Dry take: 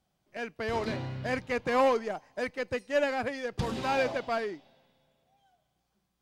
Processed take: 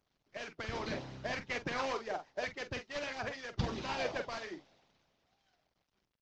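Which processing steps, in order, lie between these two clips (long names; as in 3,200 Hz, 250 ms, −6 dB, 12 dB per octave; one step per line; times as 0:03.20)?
variable-slope delta modulation 32 kbit/s
ambience of single reflections 45 ms −6.5 dB, 63 ms −17.5 dB
harmonic and percussive parts rebalanced harmonic −16 dB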